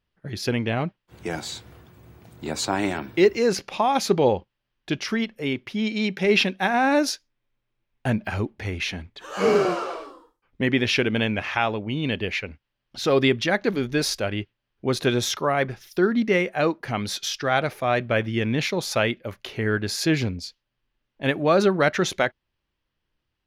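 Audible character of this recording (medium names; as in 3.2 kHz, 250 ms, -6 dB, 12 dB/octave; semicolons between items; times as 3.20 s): noise floor -80 dBFS; spectral tilt -4.5 dB/octave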